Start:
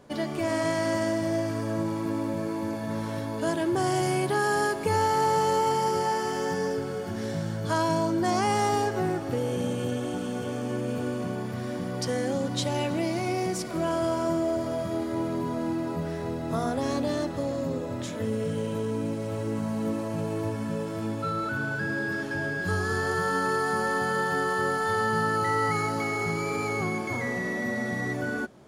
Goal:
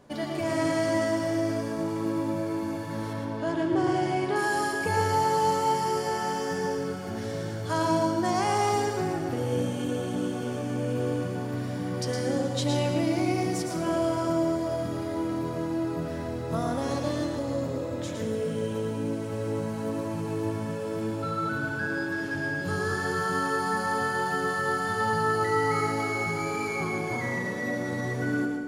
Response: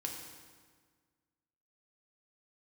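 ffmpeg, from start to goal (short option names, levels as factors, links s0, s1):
-filter_complex "[0:a]flanger=delay=1:depth=8.5:regen=-81:speed=0.12:shape=triangular,asettb=1/sr,asplit=3[s0][s1][s2];[s0]atrim=end=3.134[s3];[s1]atrim=start=3.13:end=4.36,asetpts=PTS-STARTPTS,afade=t=in:d=0.004:c=qsin,afade=t=out:st=1.226:d=0.004:c=qsin,adynamicsmooth=sensitivity=1.5:basefreq=4300[s4];[s2]atrim=start=4.356[s5];[s3][s4]acrossfade=d=0.004:c1=hsin:c2=qsin[s6];[s6][s5]acrossfade=d=0.004:c1=qsin:c2=hsin,asplit=2[s7][s8];[1:a]atrim=start_sample=2205,adelay=112[s9];[s8][s9]afir=irnorm=-1:irlink=0,volume=0.708[s10];[s7][s10]amix=inputs=2:normalize=0,volume=1.33"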